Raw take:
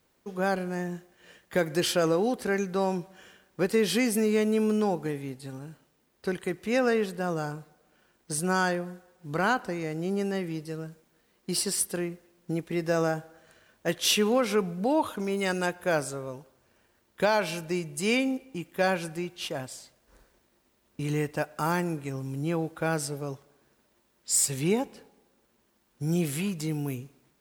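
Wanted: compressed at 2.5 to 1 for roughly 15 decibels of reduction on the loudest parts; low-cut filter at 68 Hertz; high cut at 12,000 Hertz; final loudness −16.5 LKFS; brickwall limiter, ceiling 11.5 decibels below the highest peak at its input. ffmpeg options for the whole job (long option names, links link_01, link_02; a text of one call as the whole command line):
ffmpeg -i in.wav -af "highpass=68,lowpass=12000,acompressor=threshold=-44dB:ratio=2.5,volume=29.5dB,alimiter=limit=-6dB:level=0:latency=1" out.wav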